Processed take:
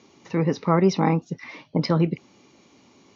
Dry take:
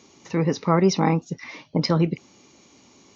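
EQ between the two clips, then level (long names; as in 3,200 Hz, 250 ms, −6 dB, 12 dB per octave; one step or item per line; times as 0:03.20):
high-pass filter 72 Hz
high-frequency loss of the air 110 metres
0.0 dB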